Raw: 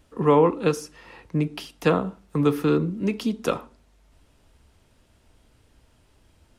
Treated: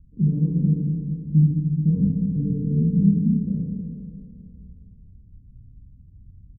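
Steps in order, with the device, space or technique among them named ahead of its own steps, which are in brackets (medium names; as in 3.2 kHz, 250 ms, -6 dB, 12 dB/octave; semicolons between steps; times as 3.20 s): club heard from the street (peak limiter -15 dBFS, peak gain reduction 8.5 dB; low-pass 180 Hz 24 dB/octave; reverberation RT60 1.4 s, pre-delay 22 ms, DRR -3.5 dB); 1.94–3.03 s: rippled EQ curve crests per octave 0.91, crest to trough 12 dB; bucket-brigade echo 215 ms, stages 4096, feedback 55%, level -8 dB; feedback delay 283 ms, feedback 53%, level -15 dB; trim +8.5 dB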